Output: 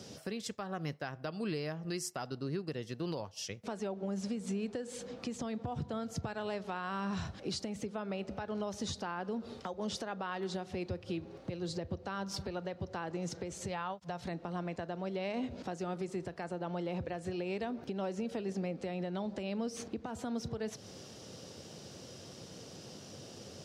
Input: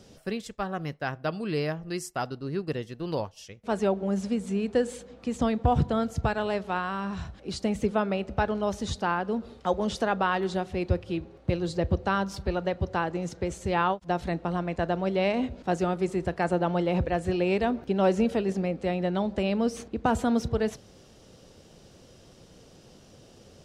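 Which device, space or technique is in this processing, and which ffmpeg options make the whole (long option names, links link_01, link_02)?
broadcast voice chain: -filter_complex "[0:a]asettb=1/sr,asplit=3[link_01][link_02][link_03];[link_01]atrim=end=13.684[link_04];[link_02]atrim=start=13.68:end=14.25,asetpts=PTS-STARTPTS,afade=type=in:duration=0.004:curve=qsin,afade=type=out:start_time=0.566:duration=0.004:curve=qsin,equalizer=frequency=320:width_type=o:width=0.58:gain=-9.5[link_05];[link_03]atrim=start=14.246[link_06];[link_04][link_05]acrossfade=duration=0.004:curve1=hsin:curve2=qsin[link_07];[link_07][link_06]acrossfade=duration=0.004:curve1=qsin:curve2=hsin,highpass=frequency=87:width=0.5412,highpass=frequency=87:width=1.3066,deesser=0.7,acompressor=threshold=-33dB:ratio=5,equalizer=frequency=5300:width_type=o:width=0.82:gain=5,alimiter=level_in=7dB:limit=-24dB:level=0:latency=1:release=307,volume=-7dB,volume=3dB"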